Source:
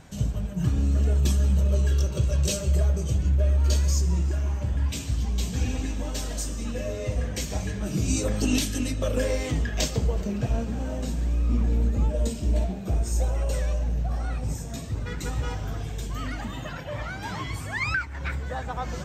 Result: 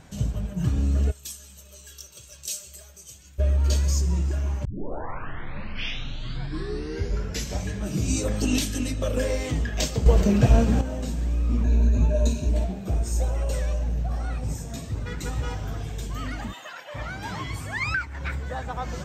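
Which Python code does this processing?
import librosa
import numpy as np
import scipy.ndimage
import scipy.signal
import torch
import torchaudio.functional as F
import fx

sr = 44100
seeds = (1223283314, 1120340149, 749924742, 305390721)

y = fx.pre_emphasis(x, sr, coefficient=0.97, at=(1.1, 3.38), fade=0.02)
y = fx.ripple_eq(y, sr, per_octave=1.5, db=14, at=(11.64, 12.49))
y = fx.highpass(y, sr, hz=760.0, slope=12, at=(16.52, 16.94), fade=0.02)
y = fx.edit(y, sr, fx.tape_start(start_s=4.65, length_s=3.04),
    fx.clip_gain(start_s=10.06, length_s=0.75, db=9.0), tone=tone)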